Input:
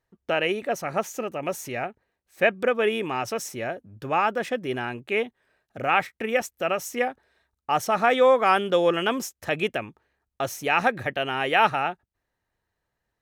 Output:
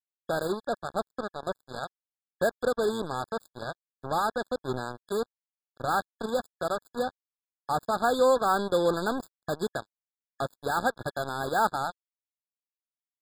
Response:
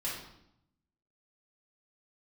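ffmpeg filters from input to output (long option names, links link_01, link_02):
-af "equalizer=frequency=68:width=0.38:gain=8,acrusher=bits=3:mix=0:aa=0.5,afftfilt=real='re*eq(mod(floor(b*sr/1024/1700),2),0)':imag='im*eq(mod(floor(b*sr/1024/1700),2),0)':win_size=1024:overlap=0.75,volume=-5dB"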